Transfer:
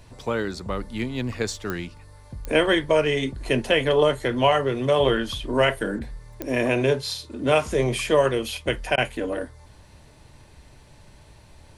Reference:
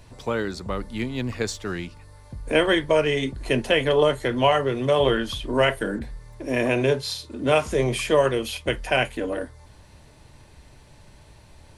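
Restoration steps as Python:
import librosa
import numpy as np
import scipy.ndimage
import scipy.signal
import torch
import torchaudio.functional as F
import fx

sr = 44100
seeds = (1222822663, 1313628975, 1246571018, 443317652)

y = fx.fix_declick_ar(x, sr, threshold=10.0)
y = fx.fix_interpolate(y, sr, at_s=(8.96,), length_ms=16.0)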